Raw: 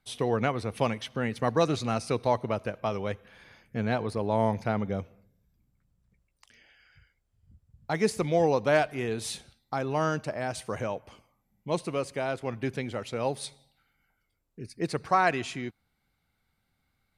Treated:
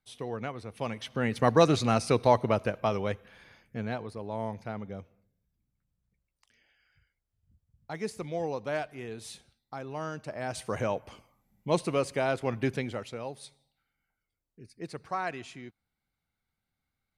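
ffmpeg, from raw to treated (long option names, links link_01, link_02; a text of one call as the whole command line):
ffmpeg -i in.wav -af "volume=15dB,afade=type=in:start_time=0.79:duration=0.67:silence=0.237137,afade=type=out:start_time=2.55:duration=1.56:silence=0.237137,afade=type=in:start_time=10.16:duration=0.75:silence=0.266073,afade=type=out:start_time=12.64:duration=0.62:silence=0.251189" out.wav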